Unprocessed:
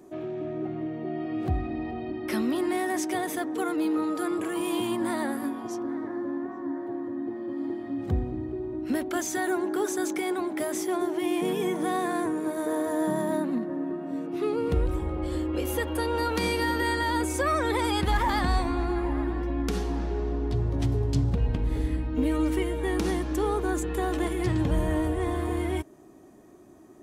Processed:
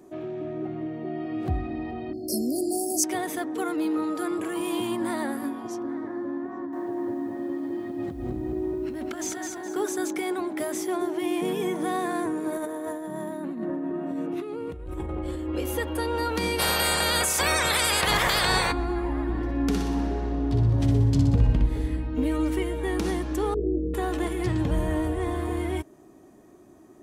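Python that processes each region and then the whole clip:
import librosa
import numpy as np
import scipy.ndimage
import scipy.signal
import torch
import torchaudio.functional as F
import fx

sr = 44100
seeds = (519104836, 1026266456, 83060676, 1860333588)

y = fx.chain(x, sr, fx.brickwall_bandstop(low_hz=750.0, high_hz=4200.0),
    fx.bass_treble(bass_db=-1, treble_db=13), at=(2.13, 3.04))
y = fx.chain(y, sr, fx.high_shelf(hz=11000.0, db=-10.5),
    fx.over_compress(threshold_db=-33.0, ratio=-1.0),
    fx.echo_crushed(ms=208, feedback_pct=35, bits=10, wet_db=-4.5), at=(6.52, 9.76))
y = fx.chain(y, sr, fx.peak_eq(hz=4800.0, db=-6.0, octaves=0.45),
    fx.over_compress(threshold_db=-32.0, ratio=-1.0), at=(12.52, 15.48))
y = fx.spec_clip(y, sr, under_db=25, at=(16.58, 18.71), fade=0.02)
y = fx.peak_eq(y, sr, hz=260.0, db=-10.5, octaves=0.65, at=(16.58, 18.71), fade=0.02)
y = fx.env_flatten(y, sr, amount_pct=50, at=(16.58, 18.71), fade=0.02)
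y = fx.chain(y, sr, fx.low_shelf(hz=220.0, db=4.5),
    fx.room_flutter(wall_m=10.5, rt60_s=0.78), at=(19.29, 21.66))
y = fx.chain(y, sr, fx.steep_lowpass(hz=590.0, slope=72),
    fx.peak_eq(hz=66.0, db=8.0, octaves=0.2),
    fx.doubler(ms=22.0, db=-4.0), at=(23.54, 23.94))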